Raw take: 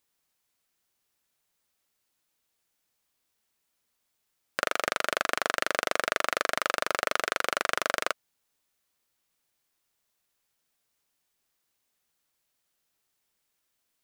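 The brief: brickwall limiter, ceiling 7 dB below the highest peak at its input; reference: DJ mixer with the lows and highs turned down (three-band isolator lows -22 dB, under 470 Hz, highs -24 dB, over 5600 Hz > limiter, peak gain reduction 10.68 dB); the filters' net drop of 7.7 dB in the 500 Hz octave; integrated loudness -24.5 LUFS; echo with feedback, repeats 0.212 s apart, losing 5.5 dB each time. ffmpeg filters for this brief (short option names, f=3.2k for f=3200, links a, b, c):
-filter_complex "[0:a]equalizer=f=500:t=o:g=-6,alimiter=limit=-11.5dB:level=0:latency=1,acrossover=split=470 5600:gain=0.0794 1 0.0631[a][b][c];[a][b][c]amix=inputs=3:normalize=0,aecho=1:1:212|424|636|848|1060|1272|1484:0.531|0.281|0.149|0.079|0.0419|0.0222|0.0118,volume=18dB,alimiter=limit=-7.5dB:level=0:latency=1"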